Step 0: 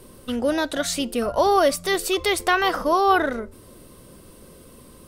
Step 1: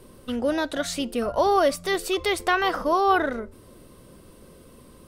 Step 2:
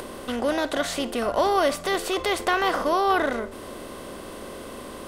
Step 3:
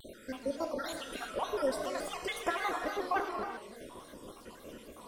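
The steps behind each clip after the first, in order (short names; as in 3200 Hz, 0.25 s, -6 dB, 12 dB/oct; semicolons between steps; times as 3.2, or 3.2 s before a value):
high shelf 5200 Hz -5.5 dB; gain -2 dB
per-bin compression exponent 0.6; upward compressor, threshold -31 dBFS; gain -3 dB
random spectral dropouts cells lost 66%; non-linear reverb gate 0.41 s flat, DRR 2.5 dB; shaped vibrato square 3.5 Hz, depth 100 cents; gain -8.5 dB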